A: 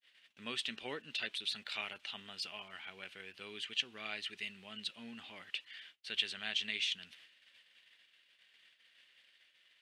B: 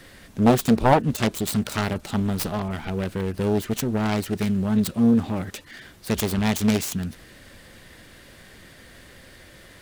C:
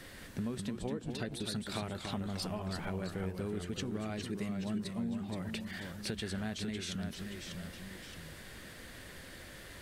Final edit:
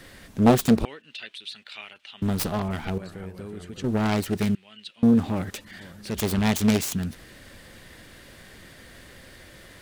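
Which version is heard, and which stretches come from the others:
B
0:00.85–0:02.22: punch in from A
0:02.98–0:03.84: punch in from C
0:04.55–0:05.03: punch in from A
0:05.70–0:06.15: punch in from C, crossfade 0.24 s

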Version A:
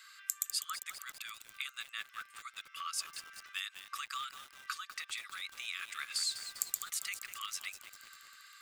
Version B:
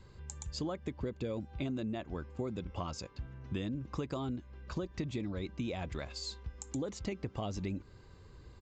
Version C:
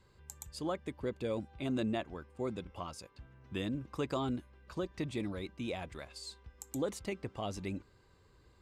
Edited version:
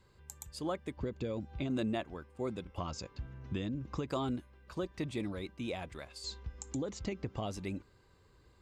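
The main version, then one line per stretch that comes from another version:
C
0:00.97–0:01.70: punch in from B
0:02.78–0:04.08: punch in from B
0:06.24–0:07.46: punch in from B
not used: A

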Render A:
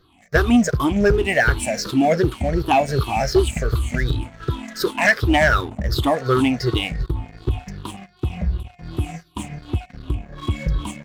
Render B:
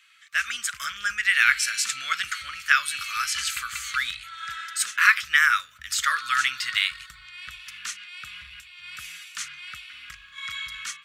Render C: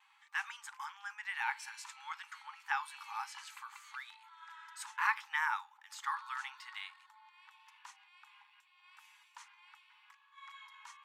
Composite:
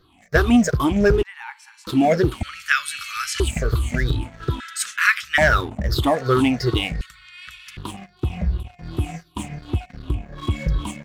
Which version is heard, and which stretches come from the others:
A
0:01.23–0:01.87: punch in from C
0:02.43–0:03.40: punch in from B
0:04.60–0:05.38: punch in from B
0:07.01–0:07.77: punch in from B

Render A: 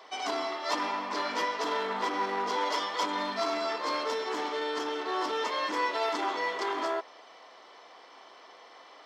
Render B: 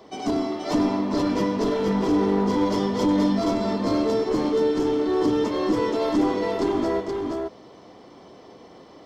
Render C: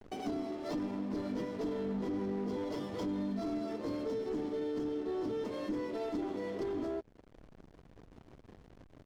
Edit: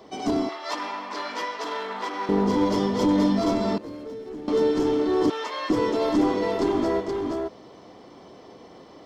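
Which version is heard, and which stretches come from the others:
B
0:00.49–0:02.29: punch in from A
0:03.78–0:04.48: punch in from C
0:05.30–0:05.70: punch in from A

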